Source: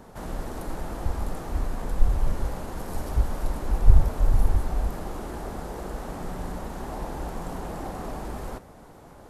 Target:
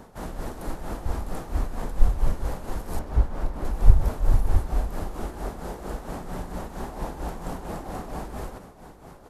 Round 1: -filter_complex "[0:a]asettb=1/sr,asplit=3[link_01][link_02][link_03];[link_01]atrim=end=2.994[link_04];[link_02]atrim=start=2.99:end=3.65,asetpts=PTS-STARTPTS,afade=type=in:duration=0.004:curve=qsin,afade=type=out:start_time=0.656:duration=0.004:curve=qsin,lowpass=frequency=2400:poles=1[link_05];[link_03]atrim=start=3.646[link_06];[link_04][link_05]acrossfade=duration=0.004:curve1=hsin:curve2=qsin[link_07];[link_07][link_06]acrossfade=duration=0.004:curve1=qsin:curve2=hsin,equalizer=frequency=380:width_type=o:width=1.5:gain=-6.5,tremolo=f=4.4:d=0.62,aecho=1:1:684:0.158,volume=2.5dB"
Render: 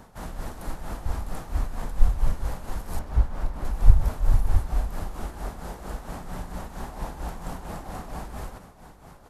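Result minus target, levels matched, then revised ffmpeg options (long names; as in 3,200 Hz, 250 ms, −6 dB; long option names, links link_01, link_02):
500 Hz band −4.0 dB
-filter_complex "[0:a]asettb=1/sr,asplit=3[link_01][link_02][link_03];[link_01]atrim=end=2.994[link_04];[link_02]atrim=start=2.99:end=3.65,asetpts=PTS-STARTPTS,afade=type=in:duration=0.004:curve=qsin,afade=type=out:start_time=0.656:duration=0.004:curve=qsin,lowpass=frequency=2400:poles=1[link_05];[link_03]atrim=start=3.646[link_06];[link_04][link_05]acrossfade=duration=0.004:curve1=hsin:curve2=qsin[link_07];[link_07][link_06]acrossfade=duration=0.004:curve1=qsin:curve2=hsin,tremolo=f=4.4:d=0.62,aecho=1:1:684:0.158,volume=2.5dB"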